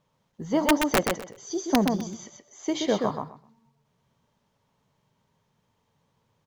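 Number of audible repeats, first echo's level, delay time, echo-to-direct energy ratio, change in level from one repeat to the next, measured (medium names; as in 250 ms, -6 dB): 3, -4.5 dB, 127 ms, -4.5 dB, -15.0 dB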